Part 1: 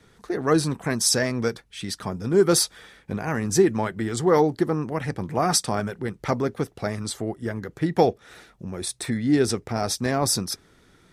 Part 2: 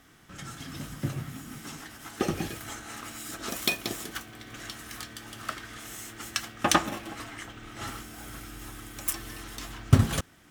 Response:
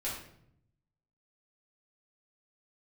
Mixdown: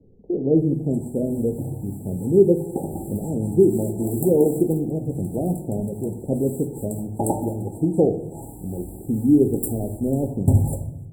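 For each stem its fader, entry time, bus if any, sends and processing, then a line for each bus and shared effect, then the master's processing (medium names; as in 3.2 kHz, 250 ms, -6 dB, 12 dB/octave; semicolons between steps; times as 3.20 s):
+1.0 dB, 0.00 s, send -6.5 dB, inverse Chebyshev low-pass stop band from 1.7 kHz, stop band 60 dB
-1.5 dB, 0.55 s, send -4 dB, none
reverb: on, RT60 0.70 s, pre-delay 4 ms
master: brick-wall FIR band-stop 940–7300 Hz; hum notches 60/120 Hz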